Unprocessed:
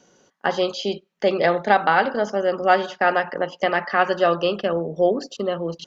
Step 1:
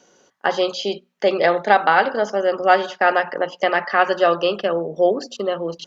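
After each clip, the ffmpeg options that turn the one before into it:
ffmpeg -i in.wav -af "bass=frequency=250:gain=-7,treble=frequency=4000:gain=0,bandreject=frequency=60:width_type=h:width=6,bandreject=frequency=120:width_type=h:width=6,bandreject=frequency=180:width_type=h:width=6,bandreject=frequency=240:width_type=h:width=6,volume=2.5dB" out.wav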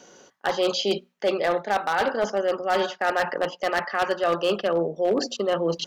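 ffmpeg -i in.wav -af "areverse,acompressor=threshold=-25dB:ratio=6,areverse,aeval=exprs='0.106*(abs(mod(val(0)/0.106+3,4)-2)-1)':channel_layout=same,volume=5dB" out.wav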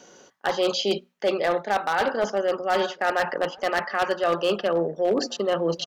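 ffmpeg -i in.wav -filter_complex "[0:a]asplit=2[link_01][link_02];[link_02]adelay=1574,volume=-23dB,highshelf=frequency=4000:gain=-35.4[link_03];[link_01][link_03]amix=inputs=2:normalize=0" out.wav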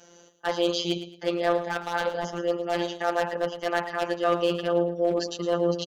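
ffmpeg -i in.wav -af "afftfilt=real='hypot(re,im)*cos(PI*b)':imag='0':win_size=1024:overlap=0.75,aecho=1:1:110|220|330:0.251|0.0728|0.0211" out.wav

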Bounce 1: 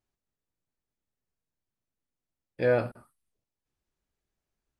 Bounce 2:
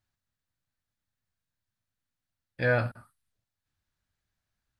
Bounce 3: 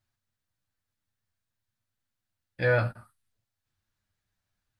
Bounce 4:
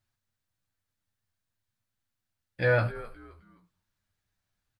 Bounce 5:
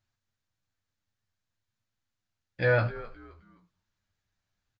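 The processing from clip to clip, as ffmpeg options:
ffmpeg -i in.wav -af "equalizer=frequency=100:width_type=o:width=0.67:gain=9,equalizer=frequency=400:width_type=o:width=0.67:gain=-9,equalizer=frequency=1600:width_type=o:width=0.67:gain=7,equalizer=frequency=4000:width_type=o:width=0.67:gain=5" out.wav
ffmpeg -i in.wav -af "flanger=delay=8.6:depth=1.7:regen=-24:speed=0.56:shape=sinusoidal,volume=4.5dB" out.wav
ffmpeg -i in.wav -filter_complex "[0:a]asplit=4[link_01][link_02][link_03][link_04];[link_02]adelay=260,afreqshift=-98,volume=-17dB[link_05];[link_03]adelay=520,afreqshift=-196,volume=-26.9dB[link_06];[link_04]adelay=780,afreqshift=-294,volume=-36.8dB[link_07];[link_01][link_05][link_06][link_07]amix=inputs=4:normalize=0" out.wav
ffmpeg -i in.wav -af "aresample=16000,aresample=44100" out.wav

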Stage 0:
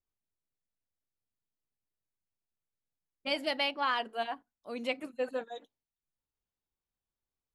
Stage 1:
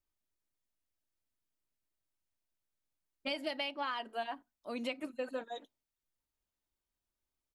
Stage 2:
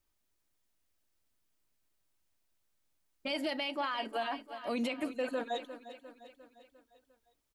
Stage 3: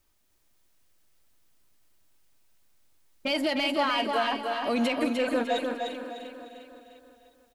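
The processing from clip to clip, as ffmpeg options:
ffmpeg -i in.wav -af "aecho=1:1:3.2:0.31,acompressor=threshold=-35dB:ratio=6,volume=1dB" out.wav
ffmpeg -i in.wav -af "aecho=1:1:351|702|1053|1404|1755:0.158|0.084|0.0445|0.0236|0.0125,alimiter=level_in=10dB:limit=-24dB:level=0:latency=1:release=24,volume=-10dB,volume=8dB" out.wav
ffmpeg -i in.wav -filter_complex "[0:a]asplit=2[link_01][link_02];[link_02]asoftclip=type=tanh:threshold=-40dB,volume=-6dB[link_03];[link_01][link_03]amix=inputs=2:normalize=0,aecho=1:1:301|602|903|1204|1505:0.596|0.214|0.0772|0.0278|0.01,volume=6dB" out.wav

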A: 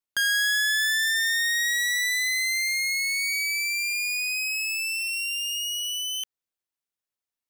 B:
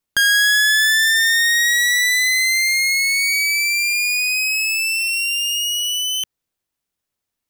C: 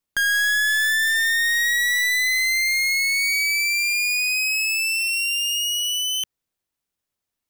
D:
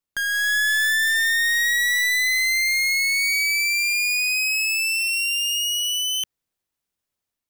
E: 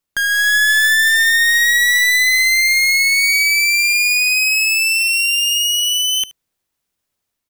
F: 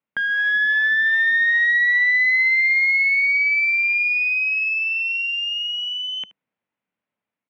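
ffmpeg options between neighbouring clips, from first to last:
ffmpeg -i in.wav -af "lowshelf=frequency=320:gain=8.5,volume=8.5dB" out.wav
ffmpeg -i in.wav -af "asoftclip=type=hard:threshold=-15.5dB,volume=-2.5dB" out.wav
ffmpeg -i in.wav -af "dynaudnorm=framelen=280:gausssize=3:maxgain=4.5dB,volume=-4.5dB" out.wav
ffmpeg -i in.wav -af "aecho=1:1:75:0.106,volume=7dB" out.wav
ffmpeg -i in.wav -af "highpass=180,equalizer=frequency=200:width_type=q:width=4:gain=4,equalizer=frequency=370:width_type=q:width=4:gain=-8,equalizer=frequency=730:width_type=q:width=4:gain=-3,equalizer=frequency=1200:width_type=q:width=4:gain=-4,equalizer=frequency=1700:width_type=q:width=4:gain=-4,lowpass=frequency=2400:width=0.5412,lowpass=frequency=2400:width=1.3066" out.wav

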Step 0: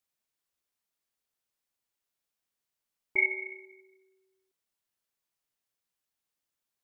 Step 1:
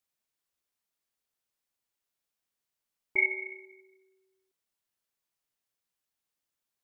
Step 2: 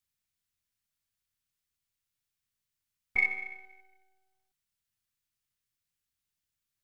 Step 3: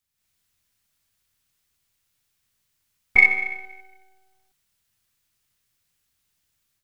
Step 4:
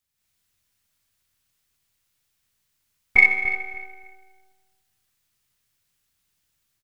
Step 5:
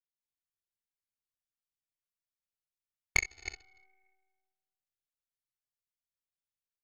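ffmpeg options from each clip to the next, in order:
ffmpeg -i in.wav -af anull out.wav
ffmpeg -i in.wav -filter_complex "[0:a]equalizer=frequency=86:width_type=o:width=1.6:gain=10.5,acrossover=split=140|240|1200[link_01][link_02][link_03][link_04];[link_03]aeval=exprs='abs(val(0))':channel_layout=same[link_05];[link_01][link_02][link_05][link_04]amix=inputs=4:normalize=0" out.wav
ffmpeg -i in.wav -af "dynaudnorm=framelen=130:gausssize=3:maxgain=9.5dB,volume=3.5dB" out.wav
ffmpeg -i in.wav -filter_complex "[0:a]asplit=2[link_01][link_02];[link_02]adelay=292,lowpass=frequency=3300:poles=1,volume=-10dB,asplit=2[link_03][link_04];[link_04]adelay=292,lowpass=frequency=3300:poles=1,volume=0.24,asplit=2[link_05][link_06];[link_06]adelay=292,lowpass=frequency=3300:poles=1,volume=0.24[link_07];[link_01][link_03][link_05][link_07]amix=inputs=4:normalize=0" out.wav
ffmpeg -i in.wav -af "acompressor=threshold=-18dB:ratio=16,aeval=exprs='0.316*(cos(1*acos(clip(val(0)/0.316,-1,1)))-cos(1*PI/2))+0.112*(cos(3*acos(clip(val(0)/0.316,-1,1)))-cos(3*PI/2))':channel_layout=same,volume=-3dB" out.wav

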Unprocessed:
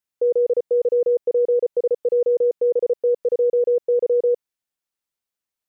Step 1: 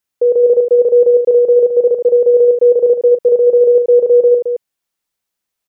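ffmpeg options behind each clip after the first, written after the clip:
ffmpeg -i in.wav -af "aecho=1:1:40.82|218.7:0.316|0.501,volume=7dB" out.wav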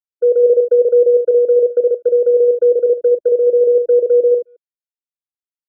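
ffmpeg -i in.wav -af "afftfilt=real='re*gte(hypot(re,im),0.0794)':imag='im*gte(hypot(re,im),0.0794)':win_size=1024:overlap=0.75,agate=range=-37dB:threshold=-13dB:ratio=16:detection=peak,asubboost=boost=6:cutoff=210" out.wav

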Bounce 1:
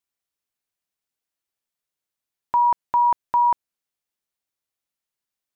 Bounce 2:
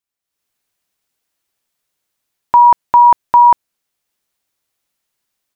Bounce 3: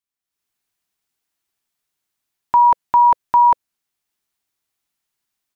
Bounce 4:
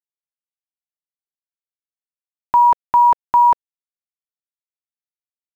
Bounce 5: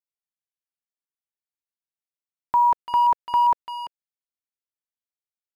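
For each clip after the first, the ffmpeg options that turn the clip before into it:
ffmpeg -i in.wav -af "dynaudnorm=framelen=230:gausssize=3:maxgain=12.5dB" out.wav
ffmpeg -i in.wav -af "equalizer=frequency=530:width=7.3:gain=-12,volume=-4.5dB" out.wav
ffmpeg -i in.wav -af "acrusher=bits=6:mix=0:aa=0.5" out.wav
ffmpeg -i in.wav -filter_complex "[0:a]asplit=2[link_01][link_02];[link_02]adelay=340,highpass=300,lowpass=3400,asoftclip=type=hard:threshold=-15.5dB,volume=-9dB[link_03];[link_01][link_03]amix=inputs=2:normalize=0,volume=-6dB" out.wav

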